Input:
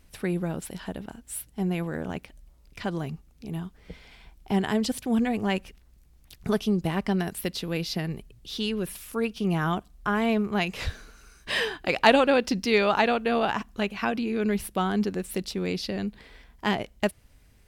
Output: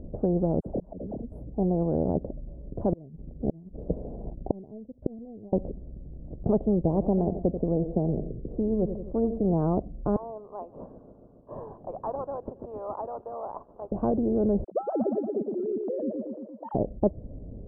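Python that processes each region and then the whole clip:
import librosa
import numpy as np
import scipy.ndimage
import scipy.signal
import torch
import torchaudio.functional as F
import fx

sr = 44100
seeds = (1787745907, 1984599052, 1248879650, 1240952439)

y = fx.chain(x, sr, fx.dispersion(late='lows', ms=62.0, hz=820.0),
    fx.auto_swell(attack_ms=673.0), at=(0.6, 1.32))
y = fx.chain(y, sr, fx.leveller(passes=1),
    fx.moving_average(points=8),
    fx.gate_flip(shuts_db=-22.0, range_db=-38), at=(2.92, 5.53))
y = fx.chain(y, sr, fx.lowpass(hz=1000.0, slope=6),
    fx.echo_feedback(ms=88, feedback_pct=38, wet_db=-16), at=(6.83, 9.53))
y = fx.chain(y, sr, fx.ladder_highpass(hz=950.0, resonance_pct=65),
    fx.echo_wet_highpass(ms=140, feedback_pct=74, hz=3600.0, wet_db=-6.0),
    fx.resample_bad(factor=6, down='none', up='hold'), at=(10.16, 13.92))
y = fx.chain(y, sr, fx.sine_speech(),
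    fx.highpass(hz=860.0, slope=6),
    fx.echo_feedback(ms=116, feedback_pct=47, wet_db=-6), at=(14.64, 16.75))
y = scipy.signal.sosfilt(scipy.signal.ellip(4, 1.0, 70, 600.0, 'lowpass', fs=sr, output='sos'), y)
y = fx.spectral_comp(y, sr, ratio=2.0)
y = y * librosa.db_to_amplitude(6.5)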